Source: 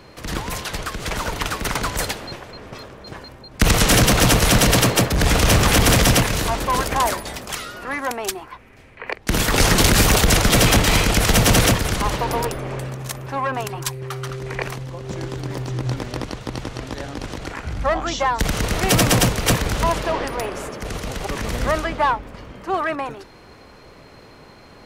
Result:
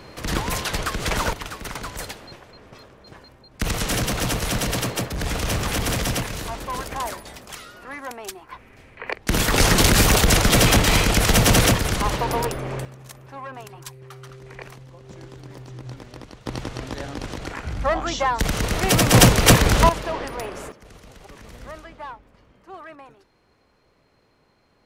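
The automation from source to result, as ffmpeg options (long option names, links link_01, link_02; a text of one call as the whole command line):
ffmpeg -i in.wav -af "asetnsamples=nb_out_samples=441:pad=0,asendcmd='1.33 volume volume -9dB;8.49 volume volume -1dB;12.85 volume volume -12.5dB;16.46 volume volume -1.5dB;19.14 volume volume 5dB;19.89 volume volume -5dB;20.72 volume volume -17.5dB',volume=2dB" out.wav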